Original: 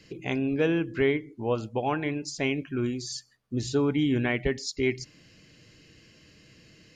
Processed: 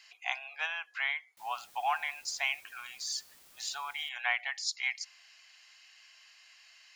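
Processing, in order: Chebyshev high-pass 720 Hz, order 6; 1.37–4.09 requantised 10-bit, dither triangular; gain +1 dB

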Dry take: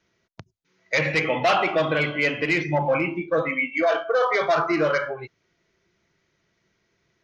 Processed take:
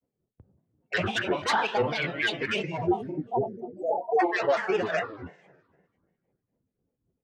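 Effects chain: low-pass opened by the level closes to 400 Hz, open at -20.5 dBFS; spectral delete 2.84–4.2, 710–6600 Hz; on a send at -14 dB: reverb RT60 1.6 s, pre-delay 3 ms; on the sum: harmonic tremolo 3.8 Hz, depth 70%, crossover 1600 Hz; grains, spray 14 ms, pitch spread up and down by 7 st; gain -1 dB

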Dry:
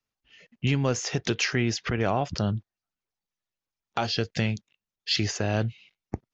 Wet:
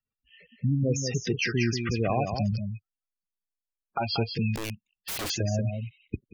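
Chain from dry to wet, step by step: rattling part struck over -31 dBFS, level -18 dBFS; spectral gate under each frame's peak -10 dB strong; on a send: echo 0.185 s -6.5 dB; 4.55–5.3 on the sum: wrapped overs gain 28 dB

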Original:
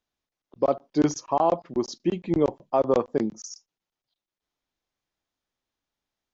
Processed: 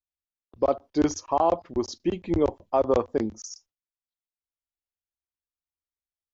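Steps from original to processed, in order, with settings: resonant low shelf 110 Hz +7.5 dB, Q 3; gate with hold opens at -46 dBFS

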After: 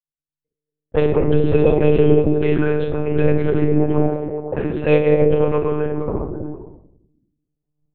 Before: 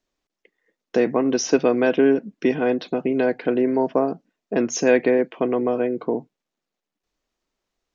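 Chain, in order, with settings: recorder AGC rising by 17 dB/s; envelope flanger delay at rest 6.7 ms, full sweep at -13.5 dBFS; gate -45 dBFS, range -28 dB; delay with a stepping band-pass 0.107 s, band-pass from 160 Hz, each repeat 0.7 oct, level -0.5 dB; shoebox room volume 2200 m³, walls furnished, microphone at 5.2 m; monotone LPC vocoder at 8 kHz 150 Hz; low-pass opened by the level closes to 360 Hz, open at -9 dBFS; 4.08–5.17 low shelf 130 Hz -8.5 dB; gain -1 dB

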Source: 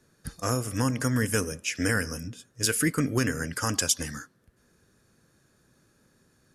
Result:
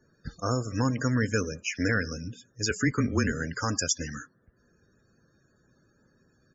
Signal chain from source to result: 2.7–3.33 frequency shift -26 Hz; downsampling 16000 Hz; loudest bins only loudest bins 64

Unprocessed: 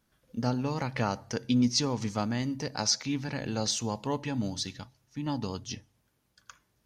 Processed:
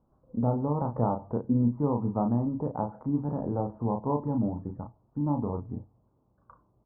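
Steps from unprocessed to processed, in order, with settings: steep low-pass 1100 Hz 48 dB/oct; in parallel at -3 dB: compressor, threshold -38 dBFS, peak gain reduction 16.5 dB; on the sum: doubler 34 ms -5.5 dB; gain +1 dB

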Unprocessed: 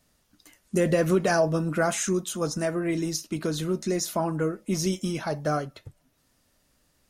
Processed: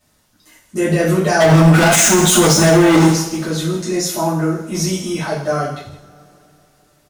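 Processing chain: transient shaper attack -4 dB, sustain +2 dB; 1.4–3.07 sample leveller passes 5; on a send: echo 0.16 s -14 dB; on the sum: two-slope reverb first 0.46 s, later 3.5 s, from -27 dB, DRR -9 dB; limiter -2 dBFS, peak gain reduction 7 dB

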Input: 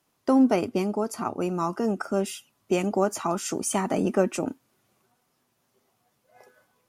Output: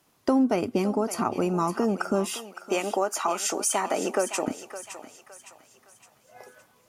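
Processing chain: 2.35–4.48 HPF 490 Hz 12 dB/oct; compressor 2.5:1, threshold -30 dBFS, peak gain reduction 10 dB; on a send: thinning echo 0.563 s, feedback 45%, high-pass 750 Hz, level -10 dB; on the sum: gain +6.5 dB

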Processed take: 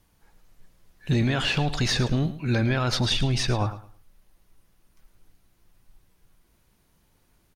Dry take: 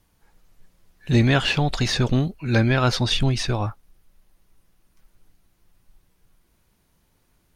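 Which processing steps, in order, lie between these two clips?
limiter -14.5 dBFS, peak gain reduction 9 dB; on a send: feedback echo 0.108 s, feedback 24%, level -14 dB

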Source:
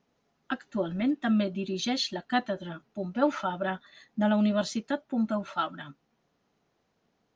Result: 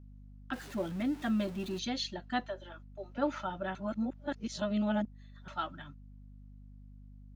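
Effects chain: 0.53–1.79 zero-crossing step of -37.5 dBFS; gate -46 dBFS, range -9 dB; 2.46–3.18 HPF 400 Hz 24 dB/oct; 3.75–5.48 reverse; hum 50 Hz, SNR 15 dB; gain -6.5 dB

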